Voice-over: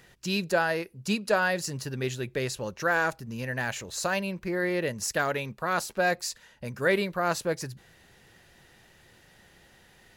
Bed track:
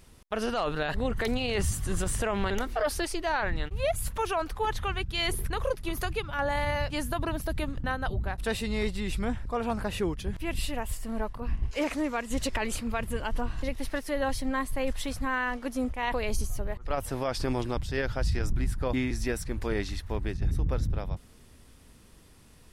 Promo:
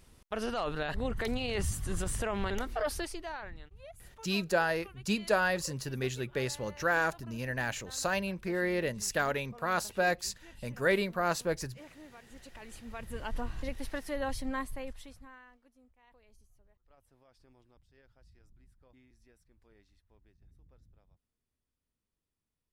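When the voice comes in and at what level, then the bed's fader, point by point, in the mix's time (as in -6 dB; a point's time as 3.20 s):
4.00 s, -3.0 dB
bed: 2.94 s -4.5 dB
3.84 s -22.5 dB
12.43 s -22.5 dB
13.29 s -5.5 dB
14.60 s -5.5 dB
15.76 s -34.5 dB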